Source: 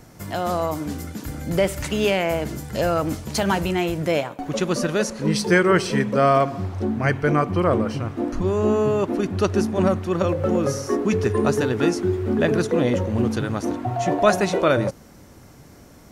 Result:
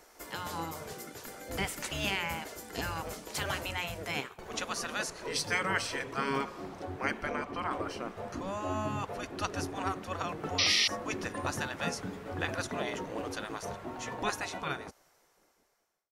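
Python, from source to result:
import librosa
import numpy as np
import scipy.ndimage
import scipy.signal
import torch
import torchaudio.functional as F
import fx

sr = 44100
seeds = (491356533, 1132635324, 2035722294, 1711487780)

y = fx.fade_out_tail(x, sr, length_s=2.46)
y = fx.spec_gate(y, sr, threshold_db=-10, keep='weak')
y = fx.high_shelf(y, sr, hz=8200.0, db=-9.0, at=(7.26, 7.71))
y = fx.spec_paint(y, sr, seeds[0], shape='noise', start_s=10.58, length_s=0.3, low_hz=1800.0, high_hz=5900.0, level_db=-21.0)
y = F.gain(torch.from_numpy(y), -5.5).numpy()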